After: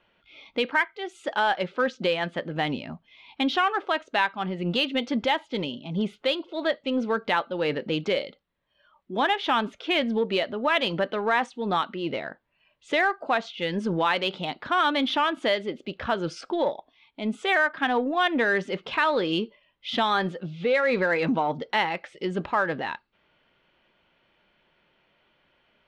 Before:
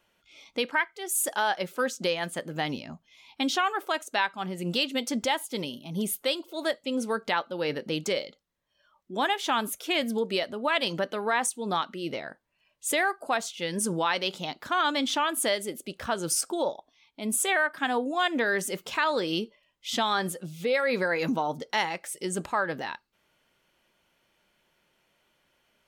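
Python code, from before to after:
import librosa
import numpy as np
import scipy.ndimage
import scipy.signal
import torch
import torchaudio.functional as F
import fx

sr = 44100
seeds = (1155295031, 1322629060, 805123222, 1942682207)

p1 = scipy.signal.sosfilt(scipy.signal.butter(4, 3700.0, 'lowpass', fs=sr, output='sos'), x)
p2 = 10.0 ** (-30.0 / 20.0) * np.tanh(p1 / 10.0 ** (-30.0 / 20.0))
p3 = p1 + F.gain(torch.from_numpy(p2), -10.0).numpy()
y = F.gain(torch.from_numpy(p3), 2.0).numpy()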